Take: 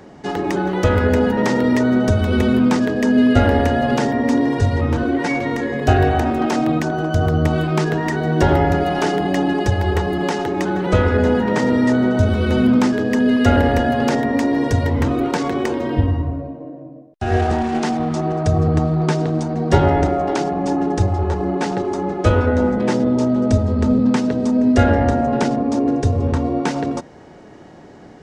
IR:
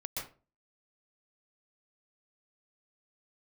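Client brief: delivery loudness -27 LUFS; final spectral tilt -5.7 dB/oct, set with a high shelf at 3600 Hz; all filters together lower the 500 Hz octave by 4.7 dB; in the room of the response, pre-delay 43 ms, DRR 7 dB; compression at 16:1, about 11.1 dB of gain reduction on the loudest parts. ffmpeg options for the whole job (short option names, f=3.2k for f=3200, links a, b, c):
-filter_complex "[0:a]equalizer=f=500:t=o:g=-6,highshelf=f=3.6k:g=-6,acompressor=threshold=-21dB:ratio=16,asplit=2[a][b];[1:a]atrim=start_sample=2205,adelay=43[c];[b][c]afir=irnorm=-1:irlink=0,volume=-8.5dB[d];[a][d]amix=inputs=2:normalize=0,volume=-2.5dB"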